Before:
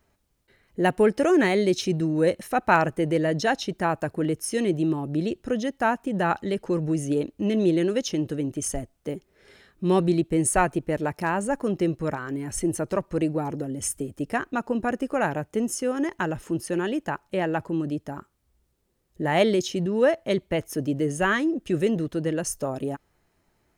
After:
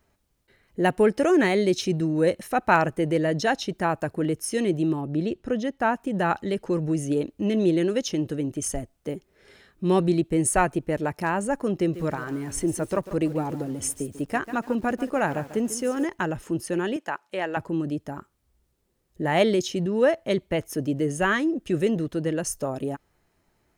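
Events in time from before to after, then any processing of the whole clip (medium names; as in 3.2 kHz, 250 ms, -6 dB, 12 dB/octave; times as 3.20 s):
5.01–5.94 s: treble shelf 5.1 kHz -8.5 dB
11.76–16.05 s: bit-crushed delay 144 ms, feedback 35%, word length 7-bit, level -13 dB
16.96–17.57 s: frequency weighting A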